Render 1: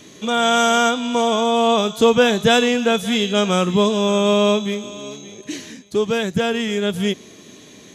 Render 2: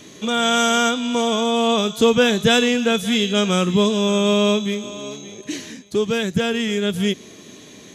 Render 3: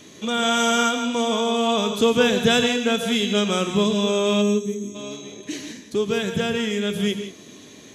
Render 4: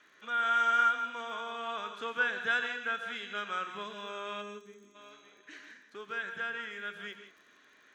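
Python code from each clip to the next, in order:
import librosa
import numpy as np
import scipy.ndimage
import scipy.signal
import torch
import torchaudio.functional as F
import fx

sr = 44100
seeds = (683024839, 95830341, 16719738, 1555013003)

y1 = fx.dynamic_eq(x, sr, hz=800.0, q=1.0, threshold_db=-32.0, ratio=4.0, max_db=-6)
y1 = F.gain(torch.from_numpy(y1), 1.0).numpy()
y2 = fx.spec_box(y1, sr, start_s=4.42, length_s=0.53, low_hz=470.0, high_hz=5500.0, gain_db=-16)
y2 = fx.hum_notches(y2, sr, base_hz=60, count=3)
y2 = fx.rev_gated(y2, sr, seeds[0], gate_ms=190, shape='rising', drr_db=7.5)
y2 = F.gain(torch.from_numpy(y2), -3.0).numpy()
y3 = fx.bandpass_q(y2, sr, hz=1500.0, q=4.6)
y3 = fx.dmg_crackle(y3, sr, seeds[1], per_s=34.0, level_db=-54.0)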